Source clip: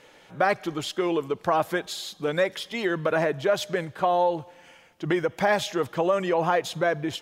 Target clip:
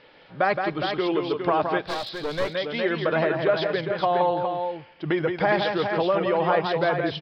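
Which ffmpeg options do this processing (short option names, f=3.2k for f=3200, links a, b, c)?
-filter_complex "[0:a]asplit=2[a][b];[b]aecho=0:1:169|411:0.531|0.473[c];[a][c]amix=inputs=2:normalize=0,aresample=11025,aresample=44100,asettb=1/sr,asplit=3[d][e][f];[d]atrim=end=1.844[g];[e]atrim=start=1.84:end=2.55,asetpts=PTS-STARTPTS,afade=t=in:d=0.004:c=qsin,afade=t=out:st=0.706:d=0.004:c=qsin,aeval=exprs='clip(val(0),-1,0.0299)':c=same[h];[f]atrim=start=2.546[i];[g][h]acrossfade=d=0.004:c1=hsin:c2=qsin[j];[j][i]acrossfade=d=0.004:c1=qsin:c2=hsin"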